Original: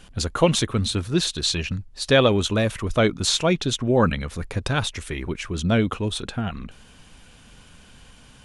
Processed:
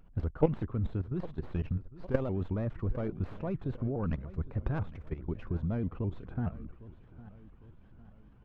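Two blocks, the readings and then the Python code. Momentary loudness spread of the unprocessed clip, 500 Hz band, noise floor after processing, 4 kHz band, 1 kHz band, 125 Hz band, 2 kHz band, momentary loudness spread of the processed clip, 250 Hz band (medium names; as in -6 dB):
10 LU, -13.5 dB, -56 dBFS, under -35 dB, -16.5 dB, -7.5 dB, -22.5 dB, 14 LU, -11.0 dB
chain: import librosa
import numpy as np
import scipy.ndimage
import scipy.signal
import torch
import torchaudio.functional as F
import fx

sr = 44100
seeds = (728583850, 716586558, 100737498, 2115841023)

y = fx.tracing_dist(x, sr, depth_ms=0.36)
y = scipy.signal.sosfilt(scipy.signal.butter(2, 1200.0, 'lowpass', fs=sr, output='sos'), y)
y = fx.level_steps(y, sr, step_db=14)
y = fx.low_shelf(y, sr, hz=190.0, db=9.5)
y = fx.echo_feedback(y, sr, ms=805, feedback_pct=48, wet_db=-17.5)
y = fx.vibrato_shape(y, sr, shape='saw_up', rate_hz=4.8, depth_cents=160.0)
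y = F.gain(torch.from_numpy(y), -8.0).numpy()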